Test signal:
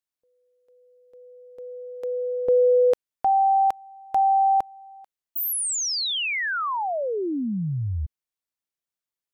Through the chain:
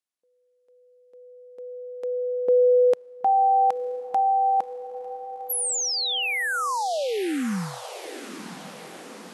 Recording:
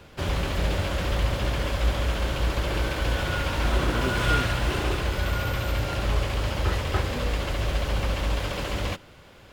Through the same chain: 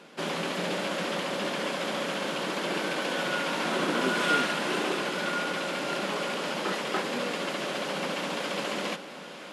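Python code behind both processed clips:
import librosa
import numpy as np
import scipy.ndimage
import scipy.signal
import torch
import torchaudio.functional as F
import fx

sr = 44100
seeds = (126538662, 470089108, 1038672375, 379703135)

y = fx.brickwall_bandpass(x, sr, low_hz=160.0, high_hz=12000.0)
y = fx.echo_diffused(y, sr, ms=980, feedback_pct=59, wet_db=-13.0)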